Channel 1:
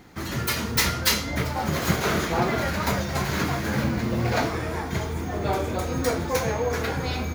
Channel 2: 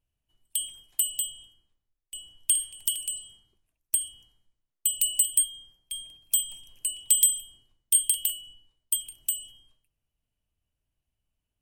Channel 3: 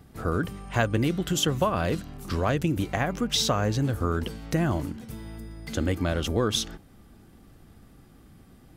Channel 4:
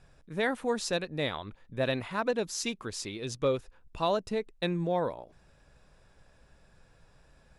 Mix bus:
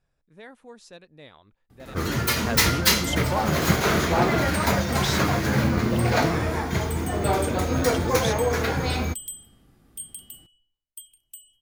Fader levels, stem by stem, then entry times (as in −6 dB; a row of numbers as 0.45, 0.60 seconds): +2.5, −15.5, −5.0, −15.5 decibels; 1.80, 2.05, 1.70, 0.00 seconds